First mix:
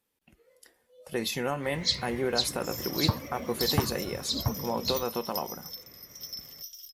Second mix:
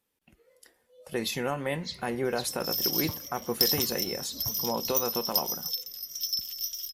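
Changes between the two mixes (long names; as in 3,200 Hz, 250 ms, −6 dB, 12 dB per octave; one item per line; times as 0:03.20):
first sound −11.5 dB
second sound +9.5 dB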